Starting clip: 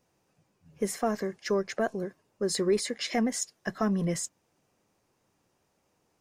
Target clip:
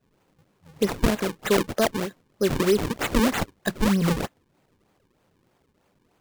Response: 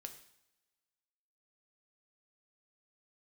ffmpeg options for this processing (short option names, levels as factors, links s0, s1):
-af "adynamicequalizer=threshold=0.0126:dfrequency=370:dqfactor=1.2:tfrequency=370:tqfactor=1.2:attack=5:release=100:ratio=0.375:range=2.5:mode=cutabove:tftype=bell,acrusher=samples=38:mix=1:aa=0.000001:lfo=1:lforange=60.8:lforate=3.2,volume=2.24"